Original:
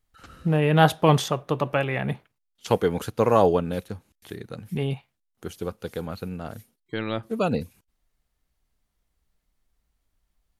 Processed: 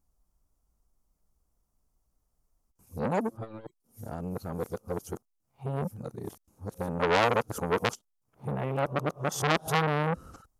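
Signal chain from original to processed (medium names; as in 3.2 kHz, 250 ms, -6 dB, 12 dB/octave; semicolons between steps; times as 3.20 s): reverse the whole clip; high-order bell 2.6 kHz -13.5 dB; transformer saturation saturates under 3 kHz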